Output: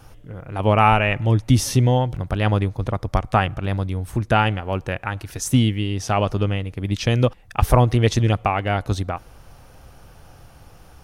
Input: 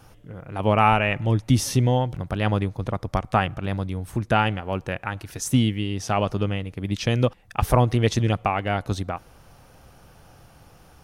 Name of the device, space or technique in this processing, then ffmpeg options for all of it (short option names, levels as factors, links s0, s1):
low shelf boost with a cut just above: -af "lowshelf=f=75:g=7,equalizer=f=180:t=o:w=0.76:g=-2.5,volume=1.33"